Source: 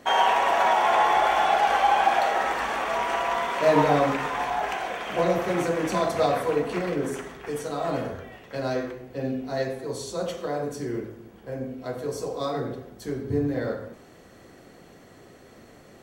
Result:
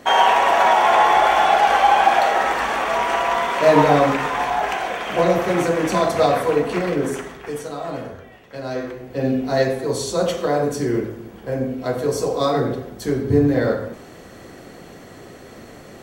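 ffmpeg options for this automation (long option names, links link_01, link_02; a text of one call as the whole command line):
ffmpeg -i in.wav -af "volume=16.5dB,afade=type=out:start_time=7.11:duration=0.75:silence=0.446684,afade=type=in:start_time=8.66:duration=0.72:silence=0.298538" out.wav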